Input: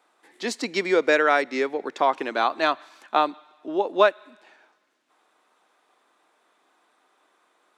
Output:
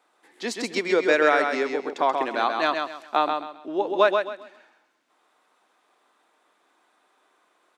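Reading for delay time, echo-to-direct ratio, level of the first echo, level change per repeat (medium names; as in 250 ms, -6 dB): 132 ms, -4.5 dB, -5.0 dB, -11.0 dB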